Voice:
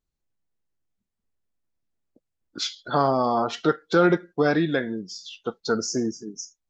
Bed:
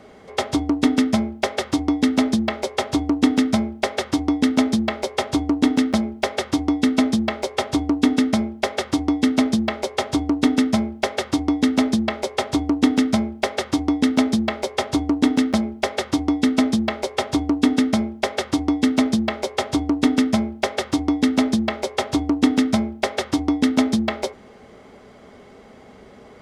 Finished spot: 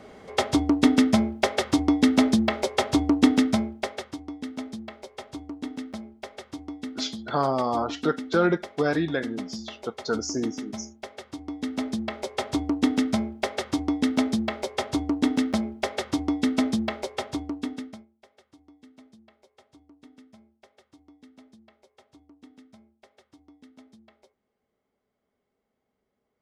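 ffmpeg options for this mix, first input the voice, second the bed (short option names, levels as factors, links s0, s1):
-filter_complex "[0:a]adelay=4400,volume=0.708[s0];[1:a]volume=3.35,afade=t=out:st=3.22:d=0.96:silence=0.158489,afade=t=in:st=11.39:d=1.14:silence=0.266073,afade=t=out:st=16.85:d=1.21:silence=0.0354813[s1];[s0][s1]amix=inputs=2:normalize=0"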